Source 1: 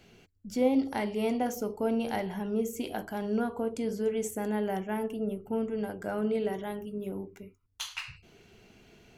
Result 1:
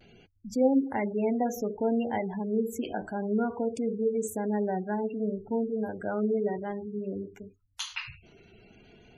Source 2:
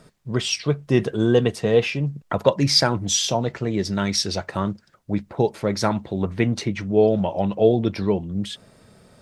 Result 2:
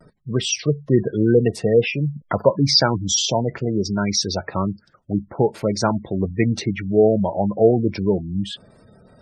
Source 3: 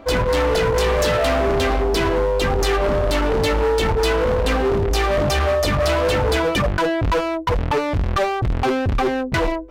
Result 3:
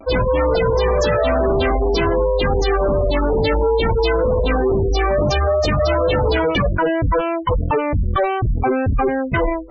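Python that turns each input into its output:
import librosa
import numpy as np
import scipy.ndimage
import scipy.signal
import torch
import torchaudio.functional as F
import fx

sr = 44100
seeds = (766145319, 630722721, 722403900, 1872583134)

y = fx.spec_gate(x, sr, threshold_db=-20, keep='strong')
y = fx.vibrato(y, sr, rate_hz=0.57, depth_cents=34.0)
y = y * librosa.db_to_amplitude(2.0)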